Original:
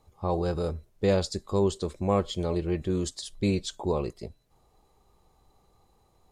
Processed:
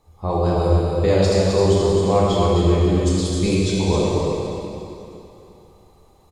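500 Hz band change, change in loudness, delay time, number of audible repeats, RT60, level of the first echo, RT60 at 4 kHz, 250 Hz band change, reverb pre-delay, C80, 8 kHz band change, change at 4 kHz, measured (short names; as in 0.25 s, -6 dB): +10.5 dB, +10.5 dB, 0.262 s, 1, 2.8 s, -5.0 dB, 2.6 s, +9.5 dB, 5 ms, -2.5 dB, +9.5 dB, +9.5 dB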